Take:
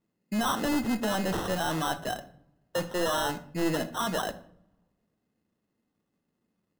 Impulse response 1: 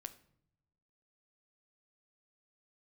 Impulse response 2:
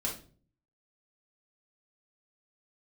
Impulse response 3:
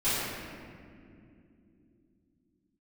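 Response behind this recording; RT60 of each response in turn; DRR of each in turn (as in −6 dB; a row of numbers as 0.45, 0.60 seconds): 1; non-exponential decay, 0.45 s, non-exponential decay; 9.5, −3.0, −16.5 decibels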